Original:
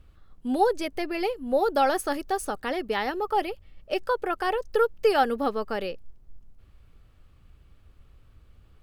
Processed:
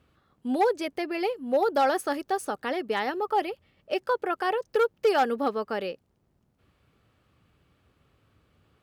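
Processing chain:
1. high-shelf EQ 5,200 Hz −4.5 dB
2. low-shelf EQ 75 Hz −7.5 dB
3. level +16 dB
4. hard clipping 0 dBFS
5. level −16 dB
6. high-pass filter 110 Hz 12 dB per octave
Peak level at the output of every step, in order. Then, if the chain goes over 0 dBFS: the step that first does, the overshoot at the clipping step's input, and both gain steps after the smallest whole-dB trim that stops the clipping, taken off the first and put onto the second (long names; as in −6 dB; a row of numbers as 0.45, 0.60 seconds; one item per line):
−10.5, −10.5, +5.5, 0.0, −16.0, −13.5 dBFS
step 3, 5.5 dB
step 3 +10 dB, step 5 −10 dB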